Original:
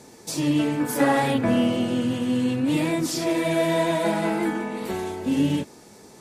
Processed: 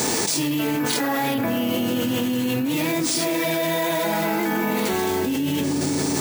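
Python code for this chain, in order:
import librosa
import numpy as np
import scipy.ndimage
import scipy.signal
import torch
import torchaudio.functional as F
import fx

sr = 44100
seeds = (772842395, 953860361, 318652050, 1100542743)

p1 = np.repeat(x[::3], 3)[:len(x)]
p2 = fx.tilt_eq(p1, sr, slope=1.5)
p3 = fx.notch(p2, sr, hz=570.0, q=15.0)
p4 = fx.comb_fb(p3, sr, f0_hz=280.0, decay_s=0.58, harmonics='all', damping=0.0, mix_pct=50)
p5 = p4 + fx.echo_filtered(p4, sr, ms=173, feedback_pct=74, hz=880.0, wet_db=-15.0, dry=0)
y = fx.env_flatten(p5, sr, amount_pct=100)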